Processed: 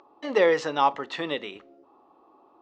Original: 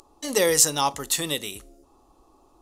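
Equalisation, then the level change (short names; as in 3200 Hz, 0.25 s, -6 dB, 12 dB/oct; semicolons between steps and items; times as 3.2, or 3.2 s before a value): BPF 190–2400 Hz; air absorption 170 m; low shelf 250 Hz -10 dB; +4.5 dB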